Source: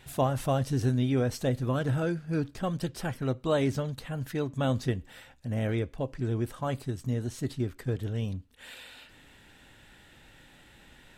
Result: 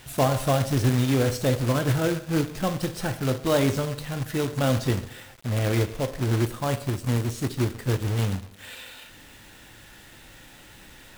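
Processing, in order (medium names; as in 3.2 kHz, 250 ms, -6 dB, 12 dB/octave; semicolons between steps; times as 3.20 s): two-slope reverb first 0.72 s, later 1.9 s, from -25 dB, DRR 7.5 dB; companded quantiser 4-bit; trim +4 dB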